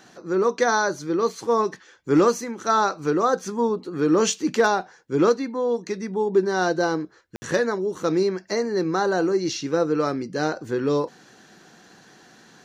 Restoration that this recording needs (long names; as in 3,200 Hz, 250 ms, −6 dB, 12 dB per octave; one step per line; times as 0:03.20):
clipped peaks rebuilt −9.5 dBFS
ambience match 0:07.36–0:07.42